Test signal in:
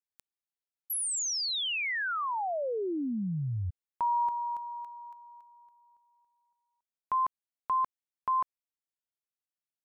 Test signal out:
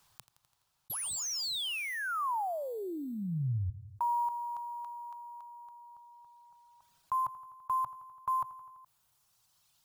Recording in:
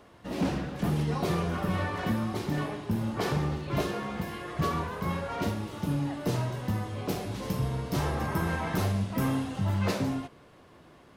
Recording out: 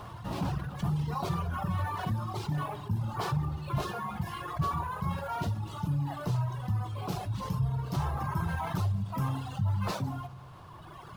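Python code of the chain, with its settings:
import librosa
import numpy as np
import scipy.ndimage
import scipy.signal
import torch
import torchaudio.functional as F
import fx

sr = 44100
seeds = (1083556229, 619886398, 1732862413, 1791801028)

p1 = x + fx.echo_feedback(x, sr, ms=84, feedback_pct=57, wet_db=-19.5, dry=0)
p2 = fx.dereverb_blind(p1, sr, rt60_s=1.9)
p3 = fx.high_shelf(p2, sr, hz=8500.0, db=-7.5)
p4 = fx.sample_hold(p3, sr, seeds[0], rate_hz=12000.0, jitter_pct=0)
p5 = p3 + F.gain(torch.from_numpy(p4), -9.0).numpy()
p6 = fx.graphic_eq_10(p5, sr, hz=(125, 250, 500, 1000, 2000), db=(9, -10, -9, 6, -9))
p7 = fx.env_flatten(p6, sr, amount_pct=50)
y = F.gain(torch.from_numpy(p7), -7.0).numpy()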